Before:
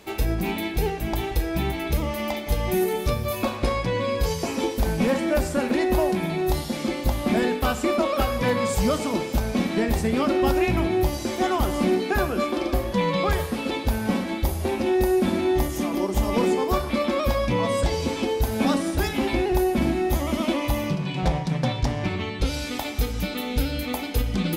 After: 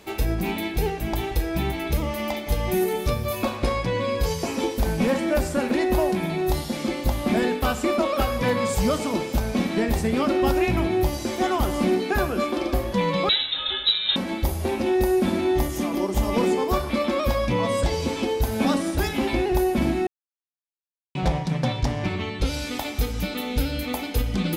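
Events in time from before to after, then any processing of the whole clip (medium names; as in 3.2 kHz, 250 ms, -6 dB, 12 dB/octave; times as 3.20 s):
13.29–14.16 s: frequency inversion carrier 3.9 kHz
20.07–21.15 s: mute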